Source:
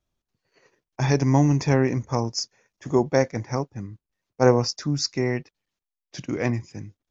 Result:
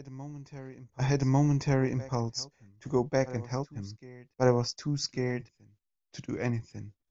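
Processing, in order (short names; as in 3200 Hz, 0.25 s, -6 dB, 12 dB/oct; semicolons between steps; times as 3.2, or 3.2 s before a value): low shelf 62 Hz +11.5 dB; reverse echo 1.148 s -17.5 dB; gain -7.5 dB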